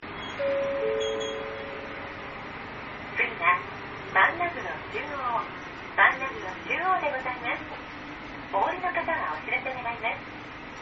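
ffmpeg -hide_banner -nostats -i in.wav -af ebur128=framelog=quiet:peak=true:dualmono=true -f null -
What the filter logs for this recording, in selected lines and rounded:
Integrated loudness:
  I:         -25.2 LUFS
  Threshold: -35.5 LUFS
Loudness range:
  LRA:         4.6 LU
  Threshold: -45.0 LUFS
  LRA low:   -27.5 LUFS
  LRA high:  -22.9 LUFS
True peak:
  Peak:       -6.2 dBFS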